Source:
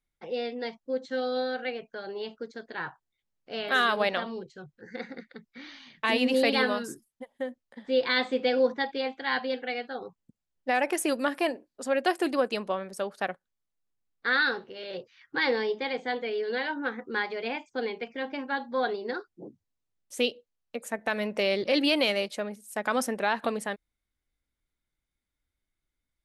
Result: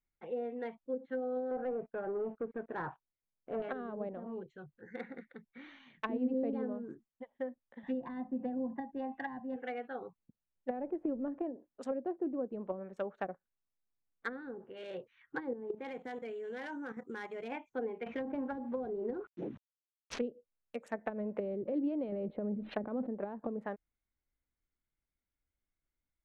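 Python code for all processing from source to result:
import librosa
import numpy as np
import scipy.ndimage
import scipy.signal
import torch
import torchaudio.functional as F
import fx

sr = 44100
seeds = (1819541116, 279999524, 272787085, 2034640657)

y = fx.chain(x, sr, fx.lowpass(hz=1200.0, slope=12),
    fx.leveller(passes=2), at=(1.51, 3.62))
y = fx.chain(y, sr, fx.lowpass(hz=4100.0, slope=12),
    fx.comb(ms=1.1, depth=0.88),
    fx.band_squash(depth_pct=40), at=(7.83, 9.56))
y = fx.chain(y, sr, fx.law_mismatch(coded='mu'),
    fx.air_absorb(metres=50.0), at=(10.69, 11.39))
y = fx.chain(y, sr, fx.peak_eq(hz=130.0, db=5.5, octaves=2.5),
    fx.level_steps(step_db=12),
    fx.sample_hold(seeds[0], rate_hz=7500.0, jitter_pct=0), at=(15.53, 17.52))
y = fx.chain(y, sr, fx.cvsd(bps=32000),
    fx.high_shelf(hz=4800.0, db=9.5),
    fx.env_flatten(amount_pct=50), at=(18.06, 20.19))
y = fx.chain(y, sr, fx.brickwall_lowpass(high_hz=4400.0),
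    fx.env_flatten(amount_pct=70), at=(22.12, 23.07))
y = fx.wiener(y, sr, points=9)
y = fx.env_lowpass_down(y, sr, base_hz=380.0, full_db=-25.0)
y = F.gain(torch.from_numpy(y), -5.0).numpy()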